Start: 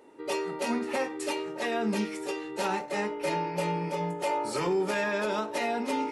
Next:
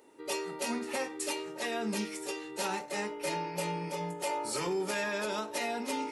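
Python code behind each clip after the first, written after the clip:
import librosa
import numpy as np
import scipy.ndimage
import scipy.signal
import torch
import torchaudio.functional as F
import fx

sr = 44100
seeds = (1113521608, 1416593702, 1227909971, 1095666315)

y = fx.high_shelf(x, sr, hz=4000.0, db=11.5)
y = y * 10.0 ** (-5.5 / 20.0)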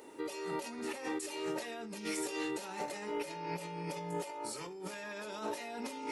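y = fx.over_compress(x, sr, threshold_db=-42.0, ratio=-1.0)
y = y * 10.0 ** (1.0 / 20.0)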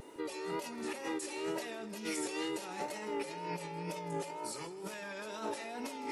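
y = fx.vibrato(x, sr, rate_hz=2.1, depth_cents=66.0)
y = fx.echo_feedback(y, sr, ms=159, feedback_pct=49, wet_db=-16.5)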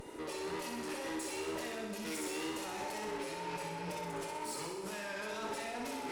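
y = fx.tube_stage(x, sr, drive_db=43.0, bias=0.25)
y = fx.echo_thinned(y, sr, ms=63, feedback_pct=63, hz=150.0, wet_db=-4)
y = y * 10.0 ** (4.0 / 20.0)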